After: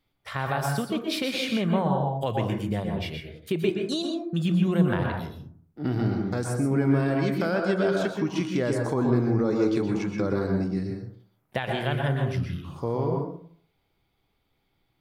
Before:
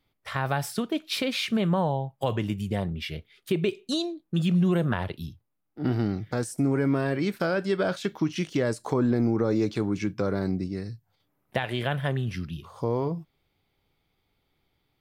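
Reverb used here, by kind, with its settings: plate-style reverb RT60 0.56 s, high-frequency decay 0.3×, pre-delay 110 ms, DRR 1.5 dB; trim -1.5 dB

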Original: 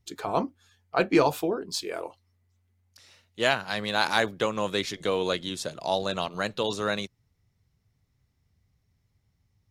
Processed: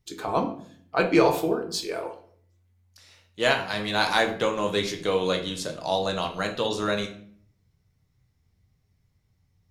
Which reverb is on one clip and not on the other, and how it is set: simulated room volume 77 m³, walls mixed, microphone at 0.49 m

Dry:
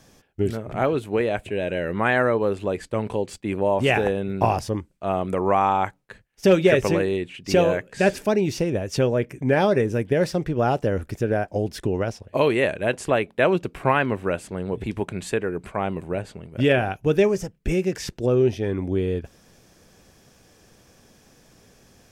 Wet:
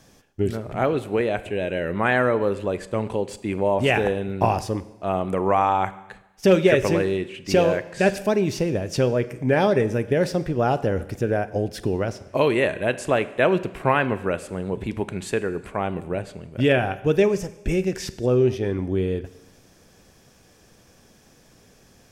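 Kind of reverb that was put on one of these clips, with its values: Schroeder reverb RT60 0.97 s, combs from 32 ms, DRR 14.5 dB

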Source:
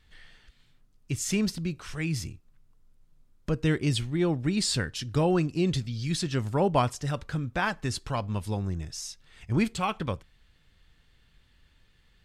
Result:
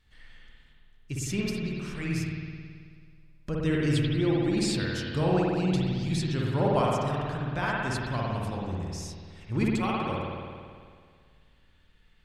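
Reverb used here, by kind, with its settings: spring tank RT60 2 s, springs 54 ms, chirp 45 ms, DRR -4 dB; trim -5 dB

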